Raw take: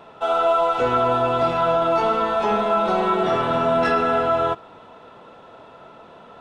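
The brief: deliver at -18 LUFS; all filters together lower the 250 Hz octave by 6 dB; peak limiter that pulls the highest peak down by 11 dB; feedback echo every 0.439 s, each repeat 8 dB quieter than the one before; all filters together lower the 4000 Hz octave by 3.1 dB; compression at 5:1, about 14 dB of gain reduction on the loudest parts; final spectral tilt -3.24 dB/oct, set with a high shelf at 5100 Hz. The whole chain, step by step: bell 250 Hz -8.5 dB; bell 4000 Hz -5.5 dB; high shelf 5100 Hz +4 dB; compressor 5:1, threshold -33 dBFS; limiter -33 dBFS; feedback echo 0.439 s, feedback 40%, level -8 dB; gain +22 dB

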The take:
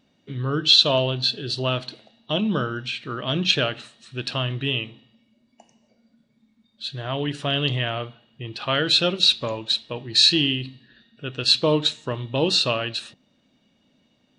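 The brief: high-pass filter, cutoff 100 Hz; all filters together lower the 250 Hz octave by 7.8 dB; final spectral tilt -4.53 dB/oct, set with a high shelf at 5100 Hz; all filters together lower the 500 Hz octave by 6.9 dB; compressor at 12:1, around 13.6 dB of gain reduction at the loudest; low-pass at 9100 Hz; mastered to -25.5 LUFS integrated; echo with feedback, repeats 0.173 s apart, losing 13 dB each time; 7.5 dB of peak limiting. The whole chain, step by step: HPF 100 Hz; LPF 9100 Hz; bell 250 Hz -9 dB; bell 500 Hz -6.5 dB; high shelf 5100 Hz -3.5 dB; compressor 12:1, threshold -27 dBFS; limiter -23 dBFS; feedback echo 0.173 s, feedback 22%, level -13 dB; gain +8.5 dB

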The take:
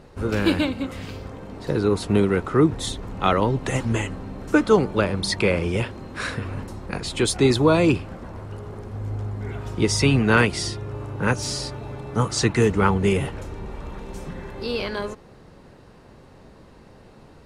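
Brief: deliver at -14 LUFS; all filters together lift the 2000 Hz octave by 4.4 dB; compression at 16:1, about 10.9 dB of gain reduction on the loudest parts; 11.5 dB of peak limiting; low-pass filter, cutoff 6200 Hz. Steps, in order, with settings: LPF 6200 Hz; bell 2000 Hz +6 dB; compressor 16:1, threshold -22 dBFS; gain +17.5 dB; limiter -3 dBFS

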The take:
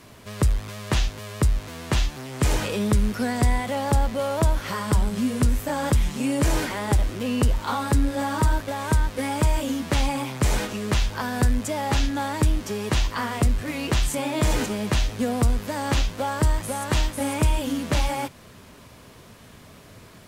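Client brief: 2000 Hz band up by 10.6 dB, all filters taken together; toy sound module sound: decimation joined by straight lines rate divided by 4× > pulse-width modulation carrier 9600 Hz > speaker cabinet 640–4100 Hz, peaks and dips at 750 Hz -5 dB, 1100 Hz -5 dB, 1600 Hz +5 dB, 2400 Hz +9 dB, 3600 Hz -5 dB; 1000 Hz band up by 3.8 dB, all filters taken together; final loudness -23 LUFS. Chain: bell 1000 Hz +8.5 dB; bell 2000 Hz +4.5 dB; decimation joined by straight lines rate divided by 4×; pulse-width modulation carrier 9600 Hz; speaker cabinet 640–4100 Hz, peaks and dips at 750 Hz -5 dB, 1100 Hz -5 dB, 1600 Hz +5 dB, 2400 Hz +9 dB, 3600 Hz -5 dB; gain +3 dB

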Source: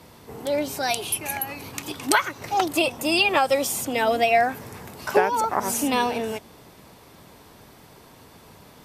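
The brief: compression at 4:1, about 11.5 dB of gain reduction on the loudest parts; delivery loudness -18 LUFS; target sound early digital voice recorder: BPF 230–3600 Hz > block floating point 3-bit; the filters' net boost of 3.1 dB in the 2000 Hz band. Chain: bell 2000 Hz +5 dB; compressor 4:1, threshold -27 dBFS; BPF 230–3600 Hz; block floating point 3-bit; gain +13 dB

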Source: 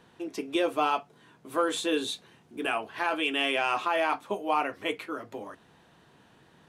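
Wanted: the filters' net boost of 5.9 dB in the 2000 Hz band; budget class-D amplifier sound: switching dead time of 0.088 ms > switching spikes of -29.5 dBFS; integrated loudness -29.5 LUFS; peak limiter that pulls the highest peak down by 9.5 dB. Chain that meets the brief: bell 2000 Hz +8 dB; limiter -21 dBFS; switching dead time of 0.088 ms; switching spikes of -29.5 dBFS; gain +3.5 dB

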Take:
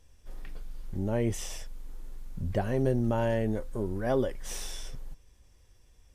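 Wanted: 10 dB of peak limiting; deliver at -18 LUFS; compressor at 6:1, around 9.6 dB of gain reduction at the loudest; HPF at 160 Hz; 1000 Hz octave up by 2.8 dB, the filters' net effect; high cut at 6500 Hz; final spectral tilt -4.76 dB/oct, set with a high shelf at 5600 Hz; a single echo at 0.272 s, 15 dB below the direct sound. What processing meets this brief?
HPF 160 Hz; LPF 6500 Hz; bell 1000 Hz +4 dB; high shelf 5600 Hz -6.5 dB; compressor 6:1, threshold -33 dBFS; limiter -32 dBFS; echo 0.272 s -15 dB; gain +25.5 dB

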